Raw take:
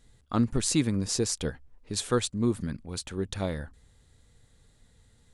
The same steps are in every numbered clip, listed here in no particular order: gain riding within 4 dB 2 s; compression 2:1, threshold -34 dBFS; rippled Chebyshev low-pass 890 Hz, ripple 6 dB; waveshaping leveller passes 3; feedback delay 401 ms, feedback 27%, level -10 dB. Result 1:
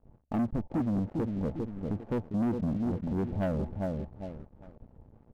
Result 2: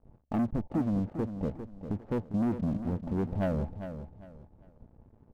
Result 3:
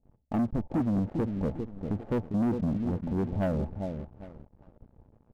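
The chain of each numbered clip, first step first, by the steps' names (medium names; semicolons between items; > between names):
gain riding > feedback delay > compression > rippled Chebyshev low-pass > waveshaping leveller; compression > gain riding > rippled Chebyshev low-pass > waveshaping leveller > feedback delay; rippled Chebyshev low-pass > gain riding > compression > feedback delay > waveshaping leveller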